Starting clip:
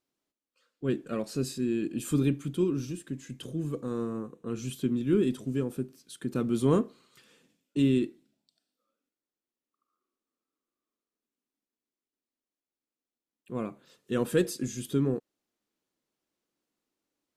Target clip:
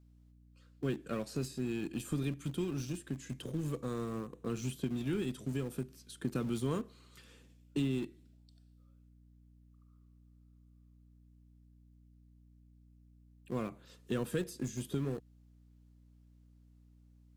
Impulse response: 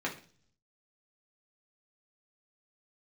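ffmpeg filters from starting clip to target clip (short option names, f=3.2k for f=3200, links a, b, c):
-filter_complex "[0:a]acrossover=split=150|1400[a][b][c];[a]acompressor=threshold=-41dB:ratio=4[d];[b]acompressor=threshold=-37dB:ratio=4[e];[c]acompressor=threshold=-49dB:ratio=4[f];[d][e][f]amix=inputs=3:normalize=0,adynamicequalizer=threshold=0.00355:dfrequency=260:dqfactor=1.1:tfrequency=260:tqfactor=1.1:attack=5:release=100:ratio=0.375:range=1.5:mode=cutabove:tftype=bell,aeval=exprs='val(0)+0.001*(sin(2*PI*60*n/s)+sin(2*PI*2*60*n/s)/2+sin(2*PI*3*60*n/s)/3+sin(2*PI*4*60*n/s)/4+sin(2*PI*5*60*n/s)/5)':c=same,asplit=2[g][h];[h]aeval=exprs='val(0)*gte(abs(val(0)),0.0119)':c=same,volume=-10.5dB[i];[g][i]amix=inputs=2:normalize=0"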